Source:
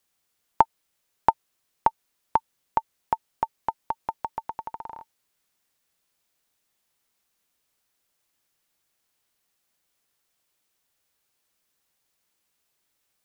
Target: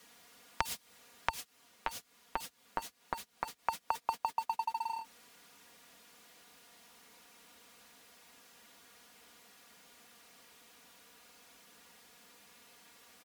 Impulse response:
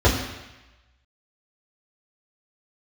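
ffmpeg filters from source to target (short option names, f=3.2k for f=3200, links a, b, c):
-filter_complex "[0:a]aeval=exprs='val(0)+0.5*0.0422*sgn(val(0))':c=same,highpass=84,aemphasis=mode=reproduction:type=cd,agate=range=-39dB:threshold=-28dB:ratio=16:detection=peak,aecho=1:1:4.2:0.77,acrossover=split=140|3000[a][b][c];[b]acompressor=threshold=-28dB:ratio=4[d];[a][d][c]amix=inputs=3:normalize=0,alimiter=limit=-18dB:level=0:latency=1:release=172,acompressor=threshold=-46dB:ratio=16,asettb=1/sr,asplit=3[e][f][g];[e]atrim=end=1.294[h];[f]atrim=start=1.29:end=3.59,asetpts=PTS-STARTPTS,afade=t=in:d=0.004:c=qsin,afade=t=out:st=2.296:d=0.004:c=qsin,flanger=delay=4.4:depth=5.4:regen=-40:speed=1:shape=triangular[i];[g]atrim=start=3.586[j];[h][i]acrossfade=d=0.004:c1=hsin:c2=qsin[k];[k][j]acrossfade=d=0.004:c1=qsin:c2=hsin,volume=16dB"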